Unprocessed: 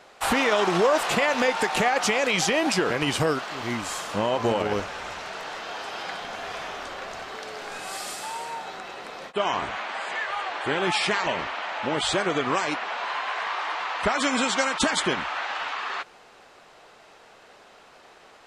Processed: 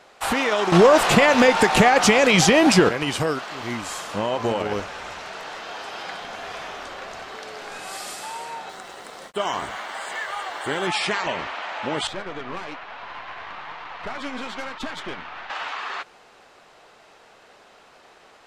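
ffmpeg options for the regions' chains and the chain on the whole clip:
-filter_complex "[0:a]asettb=1/sr,asplit=3[a][b][c];[a]atrim=end=0.724[d];[b]atrim=start=0.72:end=2.89,asetpts=PTS-STARTPTS,afade=t=in:d=0.004:c=qsin,afade=t=out:st=2.166:d=0.004:c=qsin,lowshelf=f=230:g=10.5,acontrast=56[e];[c]atrim=start=2.886[f];[d][e]acrossfade=d=0.004:c1=hsin:c2=qsin[g];[g][f]acrossfade=d=0.004:c1=qsin:c2=hsin,asettb=1/sr,asplit=3[h][i][j];[h]atrim=end=8.694[k];[i]atrim=start=8.69:end=10.87,asetpts=PTS-STARTPTS,afade=t=in:d=0.004:c=qsin,afade=t=out:st=2.176:d=0.004:c=qsin,equalizer=f=8.7k:t=o:w=0.76:g=11,bandreject=f=2.5k:w=8.4,aeval=exprs='sgn(val(0))*max(abs(val(0))-0.00282,0)':c=same[l];[j]atrim=start=10.866[m];[k][l]acrossfade=d=0.004:c1=hsin:c2=qsin[n];[n][m]acrossfade=d=0.004:c1=qsin:c2=hsin,asettb=1/sr,asplit=3[o][p][q];[o]atrim=end=12.074[r];[p]atrim=start=12.07:end=15.5,asetpts=PTS-STARTPTS,afade=t=in:d=0.004:c=qsin,afade=t=out:st=3.426:d=0.004:c=qsin,lowpass=3.7k,aeval=exprs='(tanh(11.2*val(0)+0.6)-tanh(0.6))/11.2':c=same,flanger=delay=2.9:depth=9.4:regen=66:speed=1.1:shape=triangular[s];[q]atrim=start=15.496[t];[r][s]acrossfade=d=0.004:c1=hsin:c2=qsin[u];[u][t]acrossfade=d=0.004:c1=qsin:c2=hsin"

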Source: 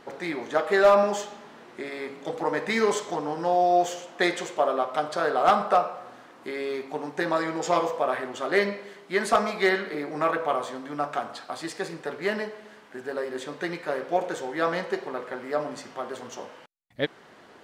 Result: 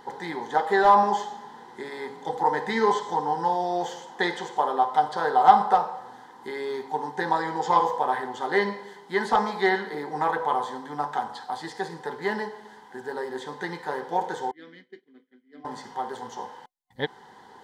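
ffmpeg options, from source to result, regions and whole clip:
-filter_complex "[0:a]asettb=1/sr,asplit=3[a][b][c];[a]atrim=end=14.514[d];[b]atrim=start=14.51:end=15.65,asetpts=PTS-STARTPTS,afade=t=in:d=0.004:c=qsin,afade=t=out:st=1.136:d=0.004:c=qsin,agate=range=-33dB:threshold=-27dB:ratio=3:release=100:detection=peak,asplit=3[e][f][g];[e]bandpass=f=270:t=q:w=8,volume=0dB[h];[f]bandpass=f=2.29k:t=q:w=8,volume=-6dB[i];[g]bandpass=f=3.01k:t=q:w=8,volume=-9dB[j];[h][i][j]amix=inputs=3:normalize=0[k];[c]atrim=start=15.646[l];[d][k]acrossfade=d=0.004:c1=hsin:c2=qsin[m];[m][l]acrossfade=d=0.004:c1=qsin:c2=hsin,acrossover=split=4900[n][o];[o]acompressor=threshold=-51dB:ratio=4:attack=1:release=60[p];[n][p]amix=inputs=2:normalize=0,superequalizer=6b=0.631:8b=0.398:9b=2.82:10b=0.631:12b=0.282"

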